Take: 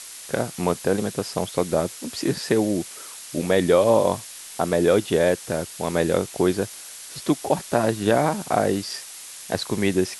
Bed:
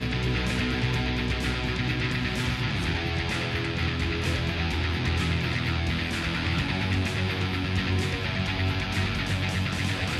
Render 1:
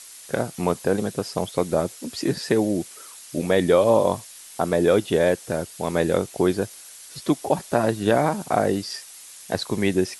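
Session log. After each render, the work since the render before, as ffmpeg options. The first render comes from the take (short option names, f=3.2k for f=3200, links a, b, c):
-af "afftdn=nr=6:nf=-40"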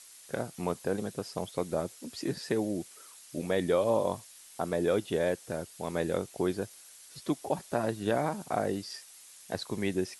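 -af "volume=-9.5dB"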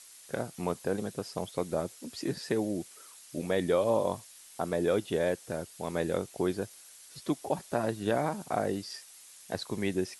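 -af anull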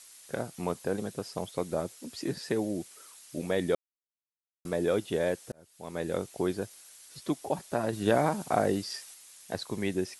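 -filter_complex "[0:a]asplit=6[a][b][c][d][e][f];[a]atrim=end=3.75,asetpts=PTS-STARTPTS,afade=t=out:st=3.746:d=0.004:c=hsin[g];[b]atrim=start=3.75:end=4.65,asetpts=PTS-STARTPTS,volume=0[h];[c]atrim=start=4.65:end=5.52,asetpts=PTS-STARTPTS,afade=t=in:d=0.004:c=hsin,afade=t=out:st=0.866:d=0.004:c=hsin[i];[d]atrim=start=5.52:end=7.932,asetpts=PTS-STARTPTS,afade=t=in:d=0.69[j];[e]atrim=start=7.928:end=9.142,asetpts=PTS-STARTPTS,volume=4dB[k];[f]atrim=start=9.138[l];[g][h][i][j]concat=n=4:v=0:a=1[m];[m][k]acrossfade=d=0.004:c1=hsin:c2=hsin[n];[n][l]acrossfade=d=0.004:c1=hsin:c2=hsin"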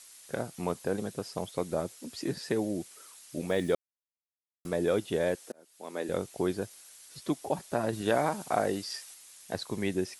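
-filter_complex "[0:a]asettb=1/sr,asplit=3[a][b][c];[a]atrim=end=3.494[d];[b]atrim=start=3.49:end=4.67,asetpts=PTS-STARTPTS,afade=t=in:d=0.004:c=qsin,afade=t=out:st=1.176:d=0.004:c=qsin,acrusher=bits=8:mix=0:aa=0.5[e];[c]atrim=start=4.666[f];[d][e]acrossfade=d=0.004:c1=hsin:c2=qsin[g];[g][f]acrossfade=d=0.004:c1=qsin:c2=hsin,asettb=1/sr,asplit=3[h][i][j];[h]atrim=end=5.354[k];[i]atrim=start=5.35:end=6.09,asetpts=PTS-STARTPTS,afade=t=in:d=0.004:c=qsin,afade=t=out:st=0.736:d=0.004:c=qsin,highpass=f=230:w=0.5412,highpass=f=230:w=1.3066[l];[j]atrim=start=6.086[m];[k][l]acrossfade=d=0.004:c1=hsin:c2=qsin[n];[n][m]acrossfade=d=0.004:c1=qsin:c2=hsin,asettb=1/sr,asplit=3[o][p][q];[o]atrim=end=8.014[r];[p]atrim=start=8.01:end=9.1,asetpts=PTS-STARTPTS,afade=t=in:d=0.004:c=qsin,afade=t=out:st=1.086:d=0.004:c=qsin,lowshelf=f=340:g=-6.5[s];[q]atrim=start=9.096[t];[r][s]acrossfade=d=0.004:c1=hsin:c2=qsin[u];[u][t]acrossfade=d=0.004:c1=qsin:c2=hsin"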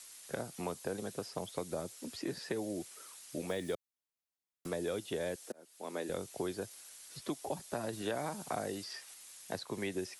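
-filter_complex "[0:a]acrossover=split=120|310|3200[a][b][c][d];[a]acompressor=threshold=-55dB:ratio=4[e];[b]acompressor=threshold=-47dB:ratio=4[f];[c]acompressor=threshold=-37dB:ratio=4[g];[d]acompressor=threshold=-48dB:ratio=4[h];[e][f][g][h]amix=inputs=4:normalize=0"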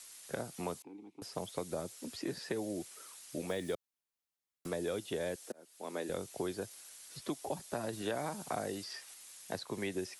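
-filter_complex "[0:a]asettb=1/sr,asplit=3[a][b][c];[a]atrim=end=0.824[d];[b]atrim=start=0.82:end=1.22,asetpts=PTS-STARTPTS,afade=t=in:d=0.004:c=qsin,afade=t=out:st=0.396:d=0.004:c=qsin,asplit=3[e][f][g];[e]bandpass=f=300:t=q:w=8,volume=0dB[h];[f]bandpass=f=870:t=q:w=8,volume=-6dB[i];[g]bandpass=f=2.24k:t=q:w=8,volume=-9dB[j];[h][i][j]amix=inputs=3:normalize=0[k];[c]atrim=start=1.216[l];[d][k]acrossfade=d=0.004:c1=hsin:c2=qsin[m];[m][l]acrossfade=d=0.004:c1=qsin:c2=hsin"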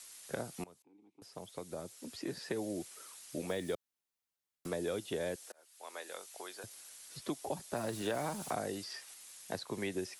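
-filter_complex "[0:a]asettb=1/sr,asplit=3[a][b][c];[a]atrim=end=5.474[d];[b]atrim=start=5.47:end=6.64,asetpts=PTS-STARTPTS,afade=t=in:d=0.004:c=qsin,afade=t=out:st=1.166:d=0.004:c=qsin,highpass=850[e];[c]atrim=start=6.636[f];[d][e]acrossfade=d=0.004:c1=hsin:c2=qsin[g];[g][f]acrossfade=d=0.004:c1=qsin:c2=hsin,asettb=1/sr,asplit=3[h][i][j];[h]atrim=end=7.764[k];[i]atrim=start=7.76:end=8.53,asetpts=PTS-STARTPTS,afade=t=in:d=0.004:c=qsin,afade=t=out:st=0.766:d=0.004:c=qsin,aeval=exprs='val(0)+0.5*0.00447*sgn(val(0))':c=same[l];[j]atrim=start=8.526[m];[k][l]acrossfade=d=0.004:c1=hsin:c2=qsin[n];[n][m]acrossfade=d=0.004:c1=qsin:c2=hsin,asplit=2[o][p];[o]atrim=end=0.64,asetpts=PTS-STARTPTS,afade=t=out:st=0.636:d=0.004:c=hsin:silence=0.0749894[q];[p]atrim=start=0.64,asetpts=PTS-STARTPTS,afade=t=in:d=1.98:silence=0.0749894[r];[q][r]concat=n=2:v=0:a=1"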